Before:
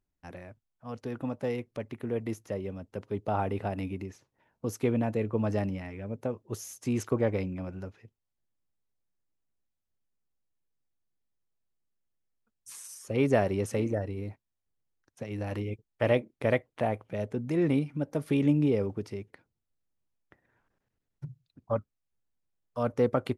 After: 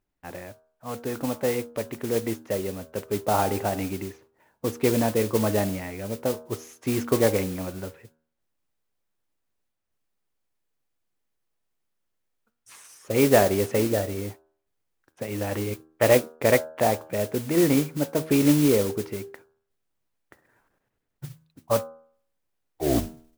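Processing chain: tape stop at the end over 0.83 s; tone controls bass -6 dB, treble -14 dB; modulation noise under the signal 13 dB; de-hum 79.25 Hz, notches 21; gain +8 dB

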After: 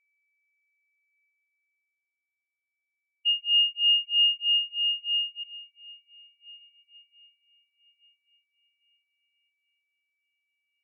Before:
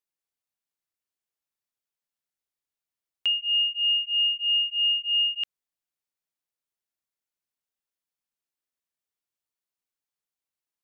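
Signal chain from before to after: bell 2500 Hz +6.5 dB 0.31 oct; whine 2300 Hz -41 dBFS; in parallel at -5.5 dB: soft clip -28 dBFS, distortion -7 dB; on the sum: diffused feedback echo 1.397 s, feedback 53%, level -9 dB; spectral expander 2.5:1; gain -2 dB

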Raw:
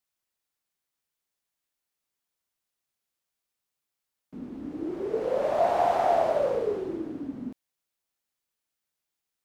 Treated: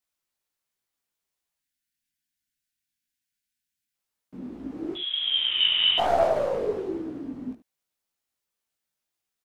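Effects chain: tracing distortion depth 0.071 ms; 1.61–3.94 spectral delete 320–1400 Hz; 4.95–5.98 inverted band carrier 3700 Hz; on a send: echo 74 ms -14 dB; on the sum: chorus voices 2, 1.2 Hz, delay 18 ms, depth 3 ms; gain +3.5 dB

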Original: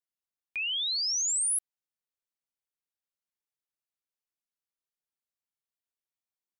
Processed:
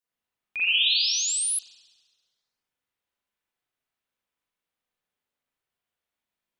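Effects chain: spring tank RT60 1.4 s, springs 37/41 ms, chirp 30 ms, DRR -9 dB; gain +1.5 dB

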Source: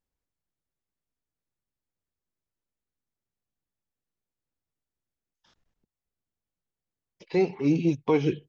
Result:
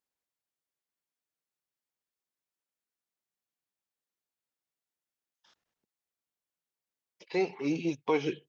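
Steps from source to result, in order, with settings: HPF 620 Hz 6 dB/oct

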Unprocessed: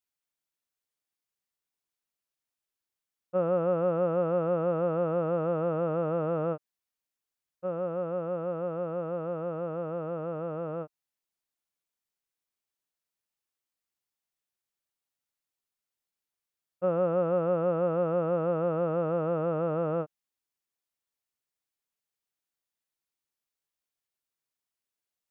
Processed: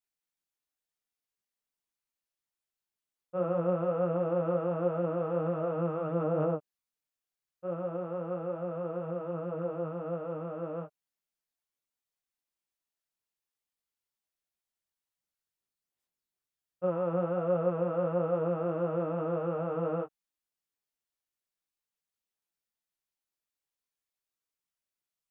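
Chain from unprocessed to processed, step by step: chorus voices 6, 1.3 Hz, delay 20 ms, depth 3.5 ms

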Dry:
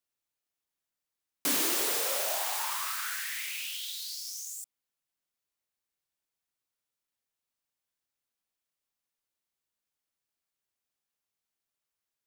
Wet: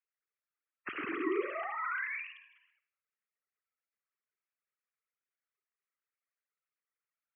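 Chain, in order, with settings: sine-wave speech; time stretch by phase-locked vocoder 0.6×; mistuned SSB -270 Hz 400–2700 Hz; band shelf 670 Hz -12.5 dB 1.2 oct; on a send: reverb, pre-delay 45 ms, DRR 11 dB

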